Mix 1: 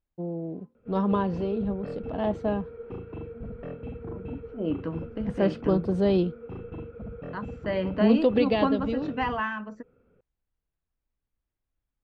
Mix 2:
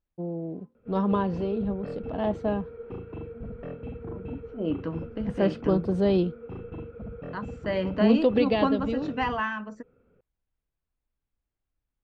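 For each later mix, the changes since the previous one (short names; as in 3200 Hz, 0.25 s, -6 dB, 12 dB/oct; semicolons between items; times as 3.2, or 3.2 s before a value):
second voice: remove air absorption 94 m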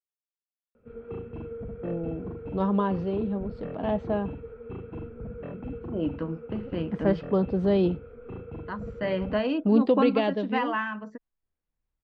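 first voice: entry +1.65 s; second voice: entry +1.35 s; master: add LPF 4000 Hz 12 dB/oct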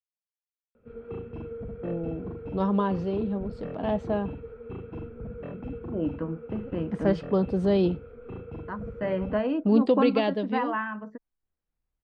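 second voice: add LPF 1800 Hz 12 dB/oct; master: remove LPF 4000 Hz 12 dB/oct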